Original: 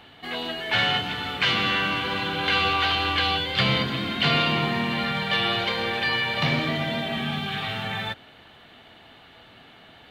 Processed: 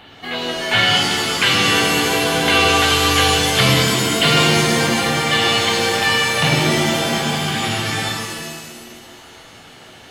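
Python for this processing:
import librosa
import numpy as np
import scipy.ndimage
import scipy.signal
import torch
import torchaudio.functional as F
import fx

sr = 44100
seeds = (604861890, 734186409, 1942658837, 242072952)

y = fx.rev_shimmer(x, sr, seeds[0], rt60_s=1.5, semitones=7, shimmer_db=-2, drr_db=4.0)
y = y * librosa.db_to_amplitude(5.5)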